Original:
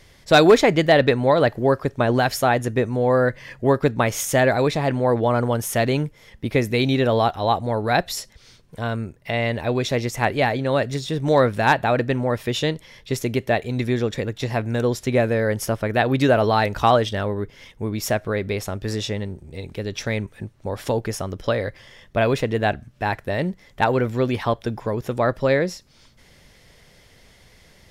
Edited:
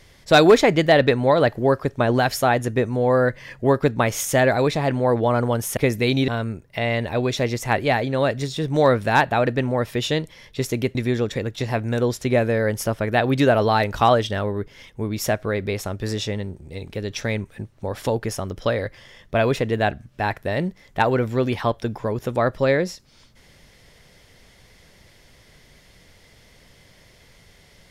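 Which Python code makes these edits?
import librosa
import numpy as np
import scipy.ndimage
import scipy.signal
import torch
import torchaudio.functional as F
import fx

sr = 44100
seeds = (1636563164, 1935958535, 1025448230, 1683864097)

y = fx.edit(x, sr, fx.cut(start_s=5.77, length_s=0.72),
    fx.cut(start_s=7.0, length_s=1.8),
    fx.cut(start_s=13.47, length_s=0.3), tone=tone)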